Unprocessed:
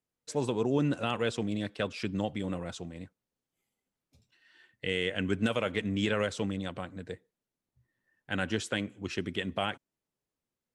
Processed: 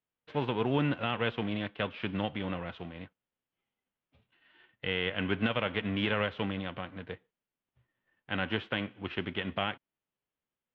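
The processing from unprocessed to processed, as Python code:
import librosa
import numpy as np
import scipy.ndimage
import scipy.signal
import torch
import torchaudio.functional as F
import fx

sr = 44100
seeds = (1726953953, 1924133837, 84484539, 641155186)

y = fx.envelope_flatten(x, sr, power=0.6)
y = scipy.signal.sosfilt(scipy.signal.cheby1(4, 1.0, 3200.0, 'lowpass', fs=sr, output='sos'), y)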